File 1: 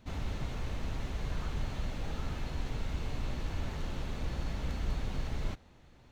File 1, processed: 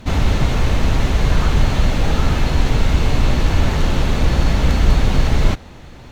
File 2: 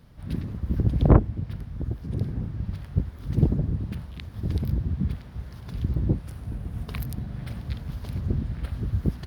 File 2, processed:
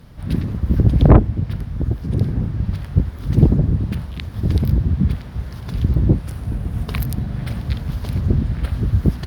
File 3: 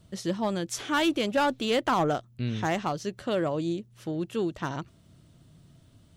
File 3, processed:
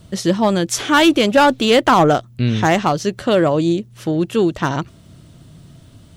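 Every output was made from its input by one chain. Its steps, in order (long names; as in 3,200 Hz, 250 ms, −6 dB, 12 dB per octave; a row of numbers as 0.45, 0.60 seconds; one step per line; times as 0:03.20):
sine wavefolder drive 4 dB, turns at −3.5 dBFS
normalise the peak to −2 dBFS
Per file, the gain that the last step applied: +12.5, +1.5, +5.0 decibels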